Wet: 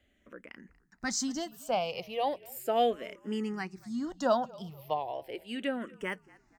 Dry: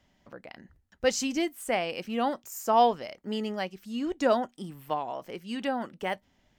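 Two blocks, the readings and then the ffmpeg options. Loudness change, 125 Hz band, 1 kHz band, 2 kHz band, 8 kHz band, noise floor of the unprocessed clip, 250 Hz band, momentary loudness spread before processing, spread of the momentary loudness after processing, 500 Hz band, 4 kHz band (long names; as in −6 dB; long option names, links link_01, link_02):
−4.0 dB, −2.0 dB, −5.0 dB, −3.5 dB, −1.0 dB, −69 dBFS, −4.0 dB, 13 LU, 16 LU, −3.0 dB, −3.0 dB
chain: -filter_complex "[0:a]asplit=2[link_01][link_02];[link_02]asplit=3[link_03][link_04][link_05];[link_03]adelay=236,afreqshift=-47,volume=-23dB[link_06];[link_04]adelay=472,afreqshift=-94,volume=-30.1dB[link_07];[link_05]adelay=708,afreqshift=-141,volume=-37.3dB[link_08];[link_06][link_07][link_08]amix=inputs=3:normalize=0[link_09];[link_01][link_09]amix=inputs=2:normalize=0,asplit=2[link_10][link_11];[link_11]afreqshift=-0.36[link_12];[link_10][link_12]amix=inputs=2:normalize=1"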